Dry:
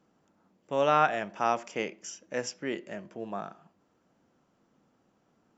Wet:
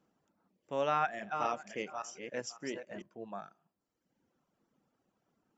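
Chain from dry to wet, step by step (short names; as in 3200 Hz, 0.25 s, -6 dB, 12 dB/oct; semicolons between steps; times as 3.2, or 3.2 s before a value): 0.91–3.02 regenerating reverse delay 0.279 s, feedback 44%, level -6 dB; reverb removal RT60 1.1 s; gain -6 dB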